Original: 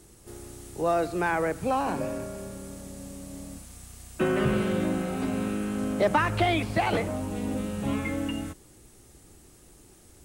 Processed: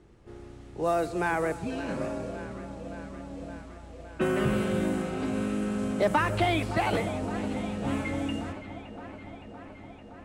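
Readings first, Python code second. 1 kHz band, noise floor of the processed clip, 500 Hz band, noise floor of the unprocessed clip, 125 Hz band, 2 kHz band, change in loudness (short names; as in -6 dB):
-2.0 dB, -47 dBFS, -1.0 dB, -55 dBFS, -1.0 dB, -1.0 dB, -2.0 dB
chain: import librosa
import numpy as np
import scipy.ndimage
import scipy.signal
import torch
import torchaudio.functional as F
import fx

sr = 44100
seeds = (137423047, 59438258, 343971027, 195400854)

y = fx.spec_repair(x, sr, seeds[0], start_s=1.67, length_s=0.29, low_hz=290.0, high_hz=1500.0, source='both')
y = fx.echo_alternate(y, sr, ms=283, hz=810.0, feedback_pct=86, wet_db=-12.5)
y = fx.env_lowpass(y, sr, base_hz=2300.0, full_db=-21.0)
y = F.gain(torch.from_numpy(y), -1.5).numpy()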